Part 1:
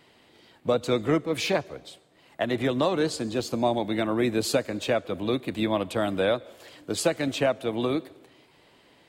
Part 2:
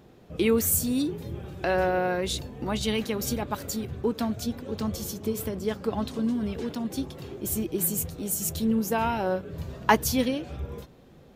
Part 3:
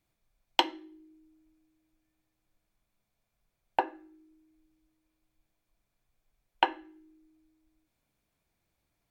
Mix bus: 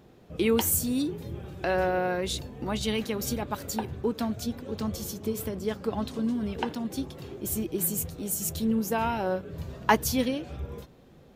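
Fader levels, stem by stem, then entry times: muted, −1.5 dB, −7.5 dB; muted, 0.00 s, 0.00 s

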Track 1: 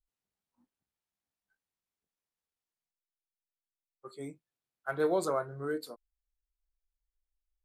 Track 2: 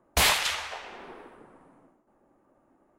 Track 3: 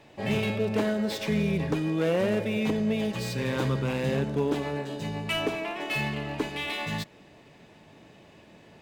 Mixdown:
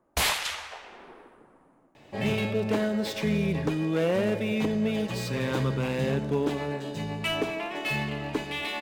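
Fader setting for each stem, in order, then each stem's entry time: −15.5, −3.5, 0.0 decibels; 0.00, 0.00, 1.95 seconds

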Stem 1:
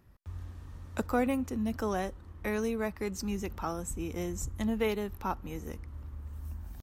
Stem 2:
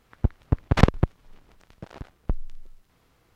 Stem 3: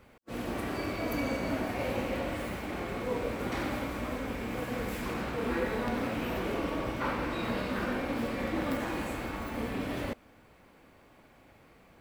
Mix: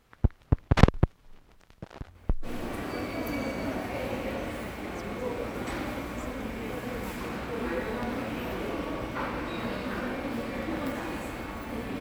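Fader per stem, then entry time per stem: −13.5, −1.5, −0.5 decibels; 1.80, 0.00, 2.15 seconds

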